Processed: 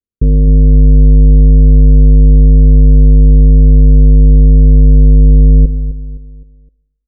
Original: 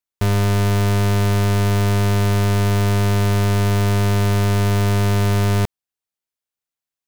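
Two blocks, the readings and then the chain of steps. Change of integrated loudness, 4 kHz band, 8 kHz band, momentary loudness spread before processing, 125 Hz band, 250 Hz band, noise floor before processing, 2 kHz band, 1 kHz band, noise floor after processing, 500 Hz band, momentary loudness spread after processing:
+10.0 dB, under -40 dB, under -40 dB, 0 LU, +8.0 dB, +7.5 dB, under -85 dBFS, under -40 dB, under -40 dB, -66 dBFS, 0.0 dB, 4 LU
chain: cycle switcher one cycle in 2, inverted; steep low-pass 530 Hz 96 dB/octave; bass shelf 310 Hz +10 dB; on a send: feedback delay 258 ms, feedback 41%, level -13 dB; on the sum: Schroeder reverb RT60 0.96 s, combs from 31 ms, DRR 15 dB; trim +1 dB

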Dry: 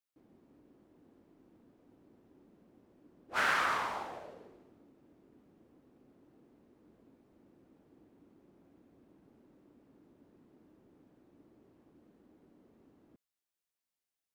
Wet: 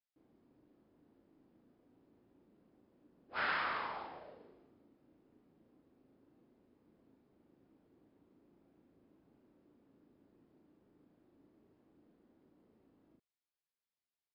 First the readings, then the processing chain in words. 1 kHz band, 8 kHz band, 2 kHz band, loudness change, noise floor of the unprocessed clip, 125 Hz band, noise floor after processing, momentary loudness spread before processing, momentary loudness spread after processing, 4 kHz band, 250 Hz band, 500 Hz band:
-5.5 dB, under -25 dB, -5.5 dB, -5.5 dB, under -85 dBFS, -5.5 dB, under -85 dBFS, 19 LU, 19 LU, -5.5 dB, -5.0 dB, -5.5 dB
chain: brick-wall FIR low-pass 5.3 kHz; doubling 37 ms -3.5 dB; trim -7 dB

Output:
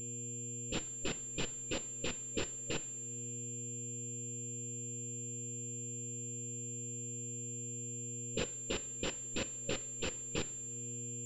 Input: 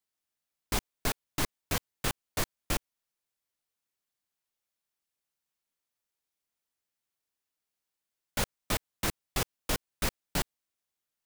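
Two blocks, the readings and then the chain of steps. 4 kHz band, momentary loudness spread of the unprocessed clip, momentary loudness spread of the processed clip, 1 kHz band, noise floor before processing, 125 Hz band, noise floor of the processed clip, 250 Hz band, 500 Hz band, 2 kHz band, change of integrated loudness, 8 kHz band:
-5.0 dB, 3 LU, 3 LU, -12.5 dB, under -85 dBFS, -2.0 dB, -44 dBFS, -2.0 dB, -1.5 dB, -7.0 dB, -5.5 dB, +4.0 dB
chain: every band turned upside down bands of 1 kHz; level-controlled noise filter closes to 930 Hz, open at -28 dBFS; mains buzz 120 Hz, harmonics 28, -60 dBFS -5 dB/octave; compression 2:1, threshold -51 dBFS, peak gain reduction 14.5 dB; two-slope reverb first 0.49 s, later 3.6 s, from -18 dB, DRR 12 dB; FFT band-reject 570–2400 Hz; class-D stage that switches slowly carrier 7.3 kHz; trim +12.5 dB

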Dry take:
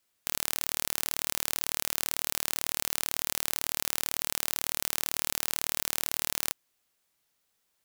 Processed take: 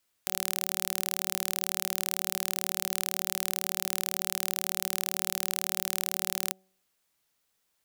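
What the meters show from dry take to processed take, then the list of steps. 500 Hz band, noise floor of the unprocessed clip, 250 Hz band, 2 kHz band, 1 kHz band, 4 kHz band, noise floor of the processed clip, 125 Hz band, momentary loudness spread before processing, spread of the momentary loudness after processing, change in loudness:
-0.5 dB, -76 dBFS, -0.5 dB, 0.0 dB, 0.0 dB, 0.0 dB, -76 dBFS, -0.5 dB, 1 LU, 1 LU, 0.0 dB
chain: de-hum 188.9 Hz, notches 4

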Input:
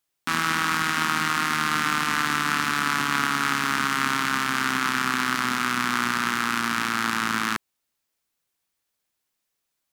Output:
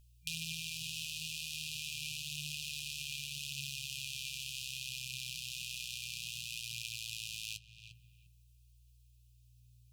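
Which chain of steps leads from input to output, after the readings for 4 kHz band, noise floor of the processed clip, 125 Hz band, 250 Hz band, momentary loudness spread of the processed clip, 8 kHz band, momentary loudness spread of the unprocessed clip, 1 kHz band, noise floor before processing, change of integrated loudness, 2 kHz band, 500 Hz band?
-9.5 dB, -64 dBFS, -13.0 dB, under -25 dB, 1 LU, -9.5 dB, 2 LU, under -40 dB, -80 dBFS, -16.5 dB, -21.5 dB, under -40 dB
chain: bass shelf 110 Hz -9.5 dB; filtered feedback delay 350 ms, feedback 26%, low-pass 1.3 kHz, level -13.5 dB; compression 2.5:1, threshold -39 dBFS, peak gain reduction 14 dB; hum 60 Hz, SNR 25 dB; flange 0.34 Hz, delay 4.2 ms, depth 6.8 ms, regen +46%; FFT band-reject 170–2400 Hz; trim +7 dB

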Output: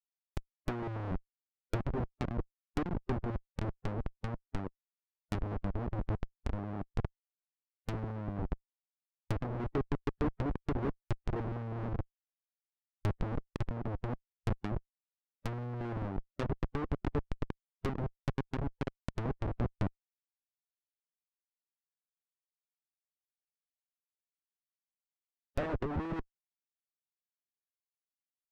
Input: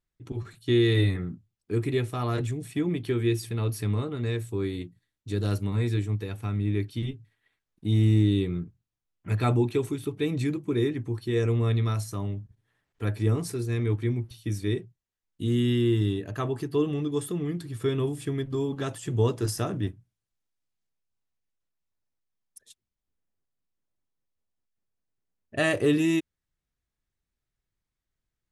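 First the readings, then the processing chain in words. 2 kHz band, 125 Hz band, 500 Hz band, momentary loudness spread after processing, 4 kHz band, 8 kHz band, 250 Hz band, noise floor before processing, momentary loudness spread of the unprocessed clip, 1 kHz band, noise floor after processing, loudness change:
-11.5 dB, -11.5 dB, -12.0 dB, 7 LU, -17.5 dB, under -15 dB, -11.5 dB, under -85 dBFS, 11 LU, -3.5 dB, under -85 dBFS, -11.0 dB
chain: Schmitt trigger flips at -23.5 dBFS; low-pass that closes with the level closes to 980 Hz, closed at -26.5 dBFS; harmonic-percussive split harmonic -10 dB

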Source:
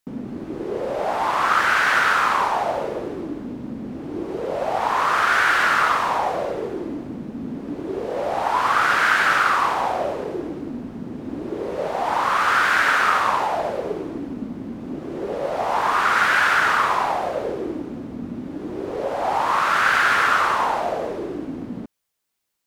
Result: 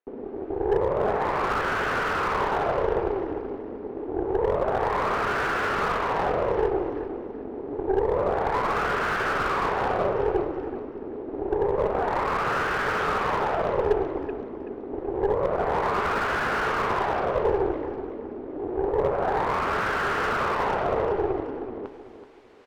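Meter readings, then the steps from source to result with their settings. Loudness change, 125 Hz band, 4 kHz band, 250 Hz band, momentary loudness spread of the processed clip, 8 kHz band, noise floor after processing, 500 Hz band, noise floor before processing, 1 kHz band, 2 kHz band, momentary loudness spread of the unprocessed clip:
-5.5 dB, +2.5 dB, -9.5 dB, -2.5 dB, 10 LU, under -10 dB, -38 dBFS, +2.0 dB, -35 dBFS, -6.0 dB, -9.0 dB, 15 LU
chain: low-pass 1.9 kHz 12 dB/octave; reverse; upward compressor, threshold -26 dBFS; reverse; resonant high-pass 410 Hz, resonance Q 4.7; Chebyshev shaper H 6 -16 dB, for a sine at -3.5 dBFS; on a send: feedback delay 379 ms, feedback 34%, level -11.5 dB; on the sum: slew-rate limiter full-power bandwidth 220 Hz; trim -7 dB

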